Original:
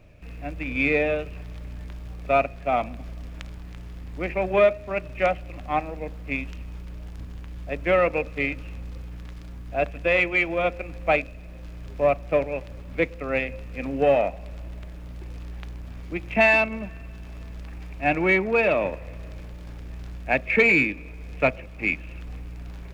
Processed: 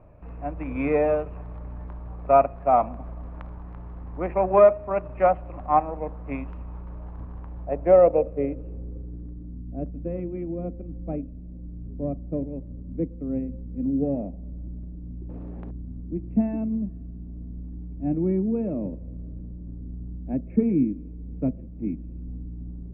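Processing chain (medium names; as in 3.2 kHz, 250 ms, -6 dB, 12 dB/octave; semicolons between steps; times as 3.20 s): low-pass sweep 1 kHz -> 250 Hz, 7.37–9.64 s; 15.29–15.71 s: spectrum-flattening compressor 2:1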